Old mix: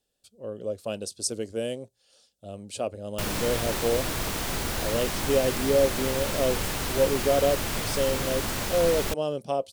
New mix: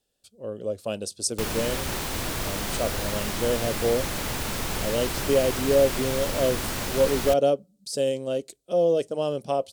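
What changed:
speech: send +9.5 dB
background: entry −1.80 s

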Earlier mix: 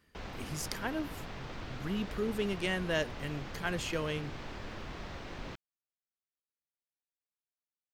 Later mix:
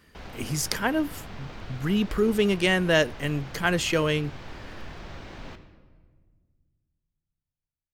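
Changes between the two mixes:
speech +11.0 dB
reverb: on, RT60 1.6 s

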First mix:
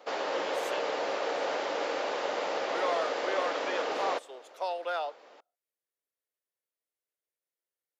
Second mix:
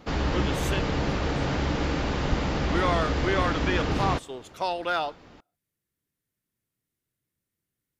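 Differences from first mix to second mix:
background −5.5 dB
master: remove four-pole ladder high-pass 450 Hz, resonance 45%

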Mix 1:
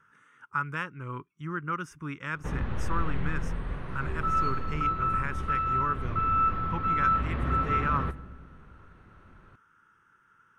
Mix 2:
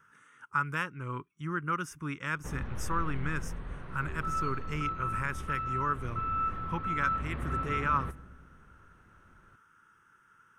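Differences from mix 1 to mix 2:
speech: add high-shelf EQ 7,200 Hz +12 dB
background −6.5 dB

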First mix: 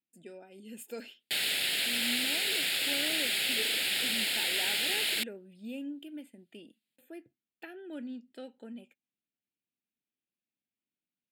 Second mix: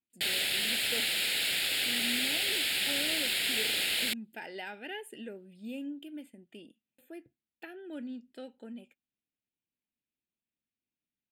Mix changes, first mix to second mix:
background: entry −1.10 s
master: remove high-pass filter 120 Hz 12 dB per octave

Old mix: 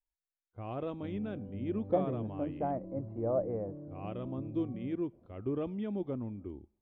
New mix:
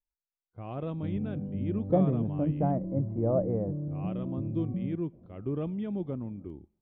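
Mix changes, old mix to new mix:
background: add low-shelf EQ 440 Hz +8 dB
master: add parametric band 160 Hz +12 dB 0.4 octaves

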